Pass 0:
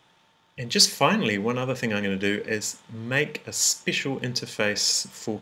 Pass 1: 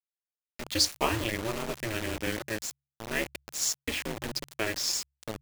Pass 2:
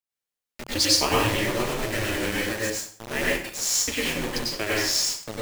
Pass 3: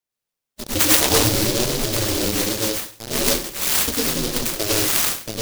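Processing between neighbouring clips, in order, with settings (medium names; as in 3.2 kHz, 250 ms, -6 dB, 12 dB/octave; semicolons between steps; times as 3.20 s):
ring modulator 110 Hz; bit crusher 5-bit; de-hum 69.07 Hz, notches 2; trim -4.5 dB
plate-style reverb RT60 0.5 s, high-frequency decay 0.85×, pre-delay 85 ms, DRR -5 dB; trim +1 dB
coarse spectral quantiser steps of 15 dB; delay time shaken by noise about 4.5 kHz, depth 0.23 ms; trim +6 dB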